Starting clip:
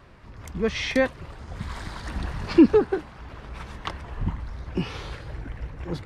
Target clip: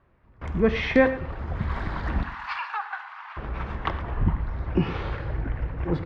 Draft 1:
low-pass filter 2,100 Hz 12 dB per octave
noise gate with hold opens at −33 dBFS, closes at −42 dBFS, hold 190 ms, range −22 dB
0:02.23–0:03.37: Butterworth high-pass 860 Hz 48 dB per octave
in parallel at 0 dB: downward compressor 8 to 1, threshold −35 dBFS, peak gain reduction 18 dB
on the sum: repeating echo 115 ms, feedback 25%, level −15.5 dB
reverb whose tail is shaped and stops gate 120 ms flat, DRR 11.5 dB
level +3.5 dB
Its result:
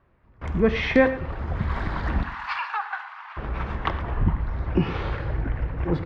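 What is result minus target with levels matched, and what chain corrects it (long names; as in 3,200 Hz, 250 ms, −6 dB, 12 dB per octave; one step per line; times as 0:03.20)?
downward compressor: peak gain reduction −8 dB
low-pass filter 2,100 Hz 12 dB per octave
noise gate with hold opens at −33 dBFS, closes at −42 dBFS, hold 190 ms, range −22 dB
0:02.23–0:03.37: Butterworth high-pass 860 Hz 48 dB per octave
in parallel at 0 dB: downward compressor 8 to 1, threshold −44 dBFS, peak gain reduction 26 dB
on the sum: repeating echo 115 ms, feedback 25%, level −15.5 dB
reverb whose tail is shaped and stops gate 120 ms flat, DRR 11.5 dB
level +3.5 dB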